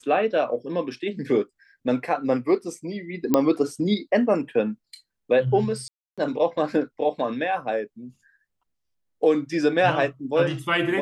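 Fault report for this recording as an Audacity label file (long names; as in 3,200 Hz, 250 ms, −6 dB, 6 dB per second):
3.340000	3.340000	click −6 dBFS
5.880000	6.180000	drop-out 296 ms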